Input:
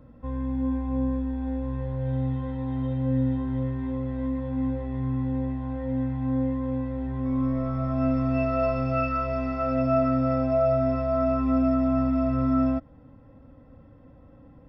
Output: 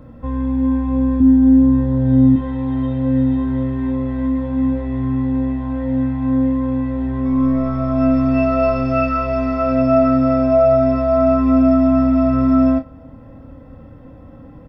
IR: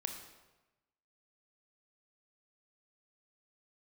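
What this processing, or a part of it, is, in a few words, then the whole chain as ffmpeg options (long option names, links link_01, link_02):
compressed reverb return: -filter_complex "[0:a]asettb=1/sr,asplit=3[link_01][link_02][link_03];[link_01]atrim=end=1.204[link_04];[link_02]atrim=start=1.2:end=2.36,asetpts=PTS-STARTPTS,afade=type=in:duration=0.004:curve=qsin,afade=type=out:start_time=1.156:duration=0.004:curve=qsin,equalizer=frequency=100:width_type=o:width=0.67:gain=11,equalizer=frequency=250:width_type=o:width=0.67:gain=11,equalizer=frequency=2500:width_type=o:width=0.67:gain=-6[link_05];[link_03]atrim=start=2.356[link_06];[link_04][link_05]acrossfade=duration=0.004:curve1=hsin:curve2=qsin[link_07];[link_07][link_06]acrossfade=duration=0.004:curve1=qsin:curve2=hsin,aecho=1:1:26|49:0.355|0.168,asplit=2[link_08][link_09];[1:a]atrim=start_sample=2205[link_10];[link_09][link_10]afir=irnorm=-1:irlink=0,acompressor=threshold=-41dB:ratio=6,volume=-6dB[link_11];[link_08][link_11]amix=inputs=2:normalize=0,volume=7.5dB"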